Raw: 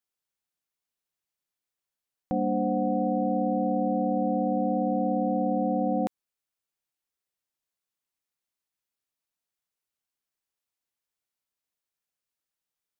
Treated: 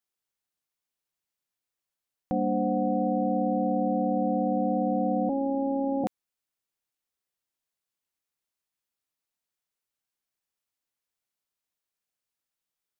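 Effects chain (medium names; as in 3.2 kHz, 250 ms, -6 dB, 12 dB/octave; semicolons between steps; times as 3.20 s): 5.29–6.04 s: robot voice 274 Hz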